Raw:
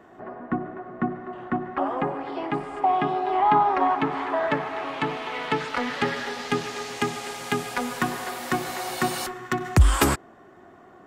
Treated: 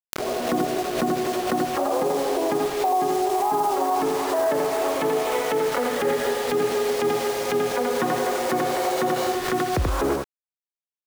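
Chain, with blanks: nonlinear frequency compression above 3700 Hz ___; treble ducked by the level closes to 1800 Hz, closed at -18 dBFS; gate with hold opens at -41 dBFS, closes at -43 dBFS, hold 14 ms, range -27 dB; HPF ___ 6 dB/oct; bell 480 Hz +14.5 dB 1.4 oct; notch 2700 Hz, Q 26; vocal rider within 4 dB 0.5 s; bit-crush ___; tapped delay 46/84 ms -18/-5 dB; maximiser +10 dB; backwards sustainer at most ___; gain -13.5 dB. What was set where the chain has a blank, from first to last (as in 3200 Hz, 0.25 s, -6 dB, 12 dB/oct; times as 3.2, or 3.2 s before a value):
1.5:1, 49 Hz, 5-bit, 66 dB/s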